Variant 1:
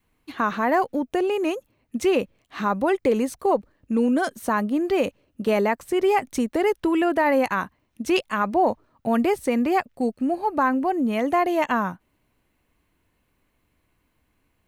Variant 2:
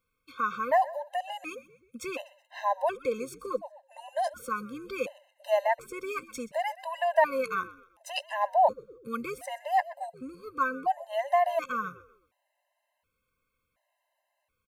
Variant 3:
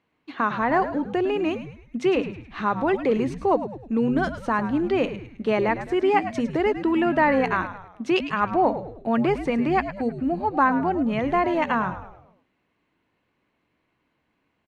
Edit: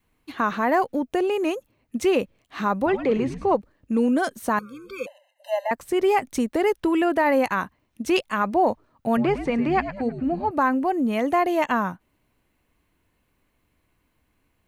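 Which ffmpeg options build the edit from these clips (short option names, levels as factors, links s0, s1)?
-filter_complex "[2:a]asplit=2[s0][s1];[0:a]asplit=4[s2][s3][s4][s5];[s2]atrim=end=2.862[s6];[s0]atrim=start=2.858:end=3.552[s7];[s3]atrim=start=3.548:end=4.592[s8];[1:a]atrim=start=4.588:end=5.712[s9];[s4]atrim=start=5.708:end=9.172[s10];[s1]atrim=start=9.168:end=10.512[s11];[s5]atrim=start=10.508[s12];[s6][s7]acrossfade=d=0.004:c1=hsin:c2=hsin[s13];[s13][s8]acrossfade=d=0.004:c1=hsin:c2=hsin[s14];[s14][s9]acrossfade=d=0.004:c1=hsin:c2=hsin[s15];[s15][s10]acrossfade=d=0.004:c1=hsin:c2=hsin[s16];[s16][s11]acrossfade=d=0.004:c1=hsin:c2=hsin[s17];[s17][s12]acrossfade=d=0.004:c1=hsin:c2=hsin"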